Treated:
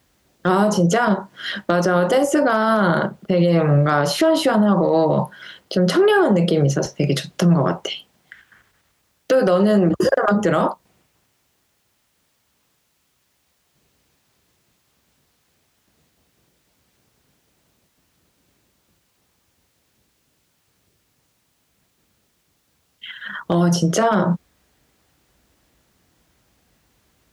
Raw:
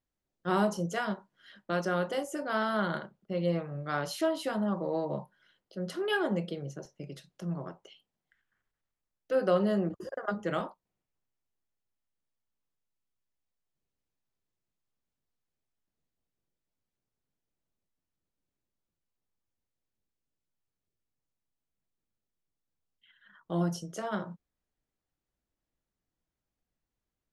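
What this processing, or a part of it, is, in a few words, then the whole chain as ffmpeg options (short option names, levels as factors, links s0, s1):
mastering chain: -filter_complex "[0:a]highpass=f=47:w=0.5412,highpass=f=47:w=1.3066,equalizer=f=3000:t=o:w=2.8:g=2.5,acrossover=split=1500|5400[s0][s1][s2];[s0]acompressor=threshold=0.0355:ratio=4[s3];[s1]acompressor=threshold=0.00251:ratio=4[s4];[s2]acompressor=threshold=0.00126:ratio=4[s5];[s3][s4][s5]amix=inputs=3:normalize=0,acompressor=threshold=0.0126:ratio=2,asoftclip=type=hard:threshold=0.0422,alimiter=level_in=47.3:limit=0.891:release=50:level=0:latency=1,volume=0.447"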